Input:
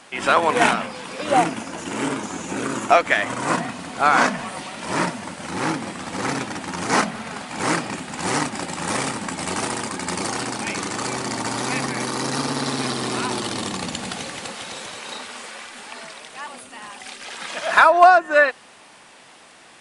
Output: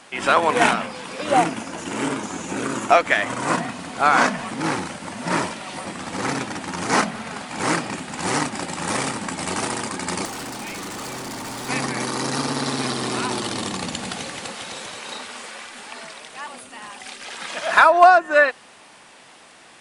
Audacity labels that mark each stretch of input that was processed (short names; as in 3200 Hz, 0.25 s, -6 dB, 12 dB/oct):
4.510000	5.850000	reverse
10.250000	11.690000	hard clip -30 dBFS